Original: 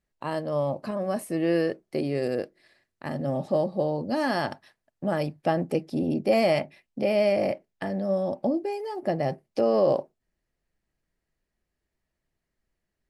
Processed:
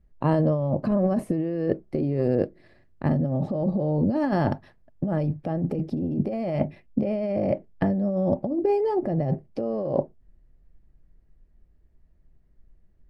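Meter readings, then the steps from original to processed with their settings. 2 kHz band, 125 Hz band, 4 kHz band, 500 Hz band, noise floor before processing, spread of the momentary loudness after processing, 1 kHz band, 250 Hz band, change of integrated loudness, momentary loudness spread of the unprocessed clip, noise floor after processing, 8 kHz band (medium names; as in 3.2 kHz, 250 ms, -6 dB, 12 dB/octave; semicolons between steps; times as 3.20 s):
-6.5 dB, +8.0 dB, under -10 dB, -1.0 dB, -83 dBFS, 6 LU, -1.5 dB, +4.0 dB, +1.0 dB, 10 LU, -59 dBFS, no reading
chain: tilt EQ -4.5 dB/octave; compressor with a negative ratio -24 dBFS, ratio -1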